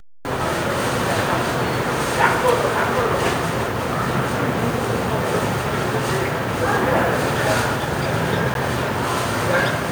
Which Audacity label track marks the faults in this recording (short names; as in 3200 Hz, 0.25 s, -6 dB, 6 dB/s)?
8.540000	8.550000	gap 12 ms